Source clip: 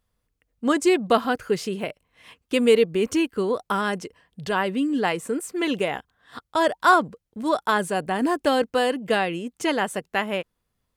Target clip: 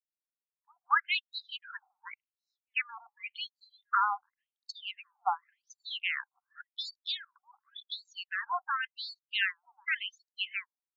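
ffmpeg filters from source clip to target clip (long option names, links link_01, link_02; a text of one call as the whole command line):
ffmpeg -i in.wav -filter_complex "[0:a]afftdn=noise_reduction=28:noise_floor=-37,adynamicequalizer=threshold=0.0224:dfrequency=810:dqfactor=0.81:tfrequency=810:tqfactor=0.81:attack=5:release=100:ratio=0.375:range=3:mode=cutabove:tftype=bell,bandreject=frequency=50:width_type=h:width=6,bandreject=frequency=100:width_type=h:width=6,bandreject=frequency=150:width_type=h:width=6,bandreject=frequency=200:width_type=h:width=6,acrossover=split=380[link_01][link_02];[link_02]adelay=230[link_03];[link_01][link_03]amix=inputs=2:normalize=0,afftfilt=real='re*between(b*sr/1024,990*pow(5400/990,0.5+0.5*sin(2*PI*0.9*pts/sr))/1.41,990*pow(5400/990,0.5+0.5*sin(2*PI*0.9*pts/sr))*1.41)':imag='im*between(b*sr/1024,990*pow(5400/990,0.5+0.5*sin(2*PI*0.9*pts/sr))/1.41,990*pow(5400/990,0.5+0.5*sin(2*PI*0.9*pts/sr))*1.41)':win_size=1024:overlap=0.75,volume=2dB" out.wav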